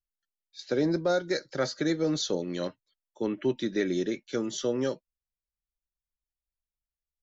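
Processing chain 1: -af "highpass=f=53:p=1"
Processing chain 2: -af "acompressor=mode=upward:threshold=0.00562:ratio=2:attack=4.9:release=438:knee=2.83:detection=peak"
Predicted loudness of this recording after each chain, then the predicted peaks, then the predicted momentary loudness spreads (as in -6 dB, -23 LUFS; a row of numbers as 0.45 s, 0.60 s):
-30.0 LUFS, -30.0 LUFS; -15.5 dBFS, -15.5 dBFS; 8 LU, 8 LU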